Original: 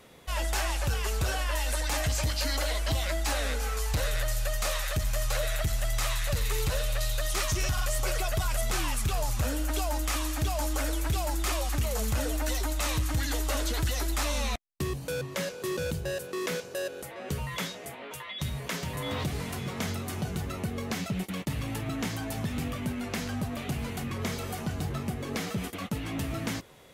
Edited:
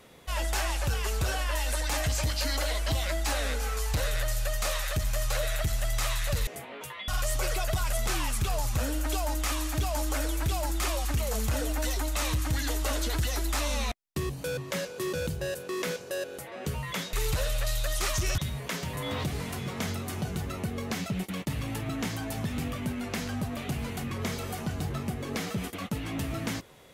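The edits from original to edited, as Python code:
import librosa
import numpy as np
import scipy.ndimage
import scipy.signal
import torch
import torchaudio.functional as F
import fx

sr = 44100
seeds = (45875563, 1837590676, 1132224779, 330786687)

y = fx.edit(x, sr, fx.swap(start_s=6.47, length_s=1.25, other_s=17.77, other_length_s=0.61), tone=tone)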